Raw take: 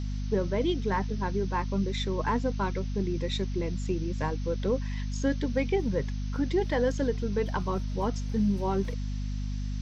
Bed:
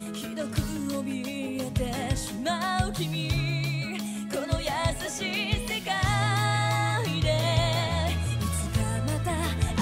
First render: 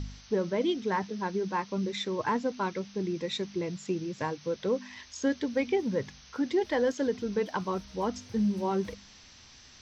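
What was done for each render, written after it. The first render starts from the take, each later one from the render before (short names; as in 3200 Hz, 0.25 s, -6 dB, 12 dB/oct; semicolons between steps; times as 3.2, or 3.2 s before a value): de-hum 50 Hz, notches 5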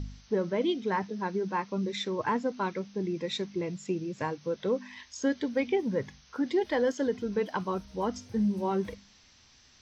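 noise print and reduce 6 dB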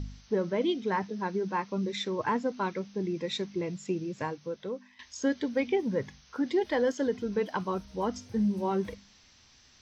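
4.11–4.99 fade out, to -16 dB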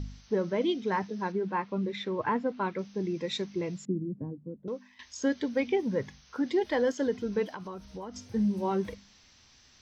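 1.32–2.79 LPF 3100 Hz; 3.85–4.68 synth low-pass 250 Hz, resonance Q 1.8; 7.45–8.27 compressor, threshold -36 dBFS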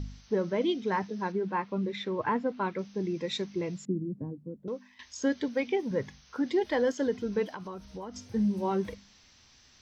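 5.48–5.91 low shelf 150 Hz -11 dB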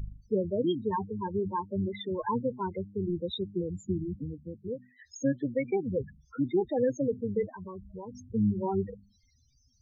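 octaver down 1 oct, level -6 dB; loudest bins only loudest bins 8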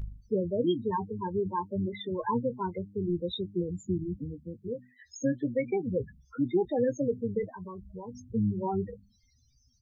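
doubler 17 ms -11 dB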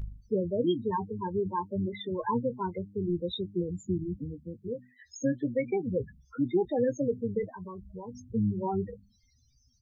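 nothing audible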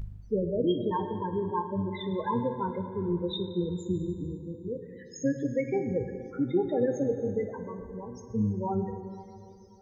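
plate-style reverb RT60 2.8 s, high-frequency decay 0.7×, DRR 6.5 dB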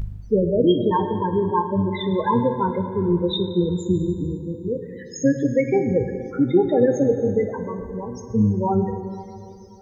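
gain +9.5 dB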